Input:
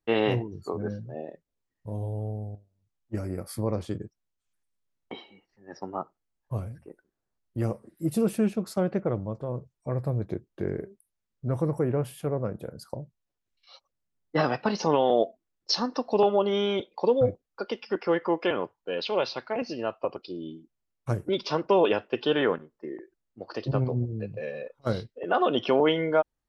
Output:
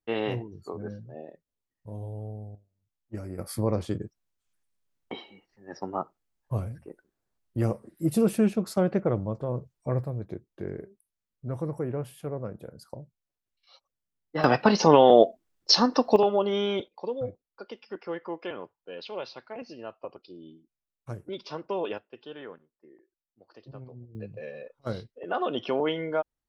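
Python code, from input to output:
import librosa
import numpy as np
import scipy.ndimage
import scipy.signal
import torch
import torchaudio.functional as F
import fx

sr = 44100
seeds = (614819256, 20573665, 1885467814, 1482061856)

y = fx.gain(x, sr, db=fx.steps((0.0, -5.0), (3.39, 2.0), (10.04, -5.0), (14.44, 6.5), (16.16, -1.0), (16.88, -9.5), (21.98, -18.0), (24.15, -5.0)))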